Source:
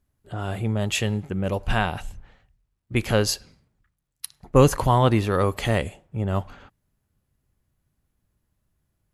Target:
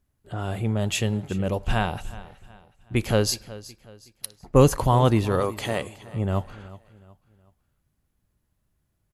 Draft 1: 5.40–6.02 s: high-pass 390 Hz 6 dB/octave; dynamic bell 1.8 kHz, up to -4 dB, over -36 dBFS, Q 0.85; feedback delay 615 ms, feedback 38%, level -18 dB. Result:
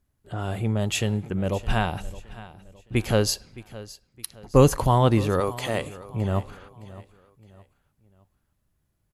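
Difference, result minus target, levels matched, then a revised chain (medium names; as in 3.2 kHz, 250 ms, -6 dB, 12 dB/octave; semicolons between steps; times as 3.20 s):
echo 245 ms late
5.40–6.02 s: high-pass 390 Hz 6 dB/octave; dynamic bell 1.8 kHz, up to -4 dB, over -36 dBFS, Q 0.85; feedback delay 370 ms, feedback 38%, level -18 dB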